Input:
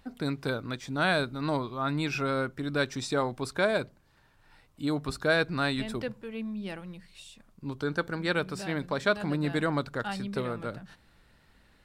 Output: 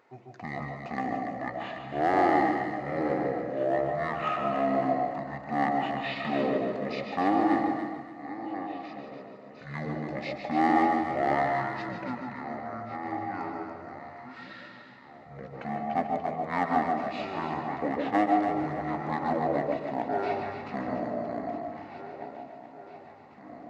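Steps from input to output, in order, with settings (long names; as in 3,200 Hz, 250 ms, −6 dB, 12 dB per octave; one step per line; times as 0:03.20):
feedback delay that plays each chunk backwards 660 ms, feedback 48%, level −13 dB
high-shelf EQ 7,300 Hz −11.5 dB
in parallel at −5 dB: hard clipping −27 dBFS, distortion −9 dB
on the sum: wrong playback speed 15 ips tape played at 7.5 ips
high-pass filter 340 Hz 12 dB per octave
delay that swaps between a low-pass and a high-pass 143 ms, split 990 Hz, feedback 53%, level −2 dB
on a send at −5.5 dB: convolution reverb RT60 0.45 s, pre-delay 105 ms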